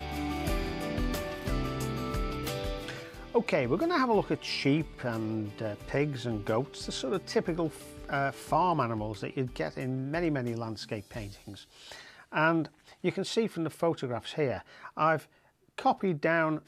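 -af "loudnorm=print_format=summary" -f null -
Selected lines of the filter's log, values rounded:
Input Integrated:    -31.3 LUFS
Input True Peak:     -11.7 dBTP
Input LRA:             3.4 LU
Input Threshold:     -41.7 LUFS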